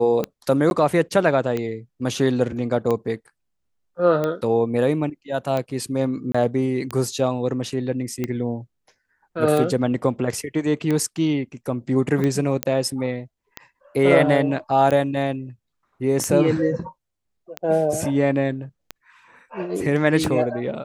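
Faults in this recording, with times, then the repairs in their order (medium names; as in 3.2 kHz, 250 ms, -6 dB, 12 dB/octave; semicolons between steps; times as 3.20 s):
tick 45 rpm -12 dBFS
0.70–0.71 s: dropout 11 ms
6.32–6.34 s: dropout 25 ms
12.63 s: pop -4 dBFS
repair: de-click; interpolate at 0.70 s, 11 ms; interpolate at 6.32 s, 25 ms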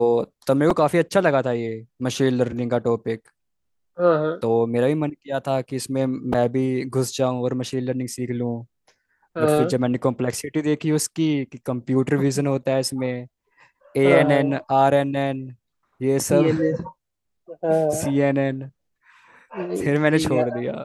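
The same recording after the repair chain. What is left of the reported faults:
nothing left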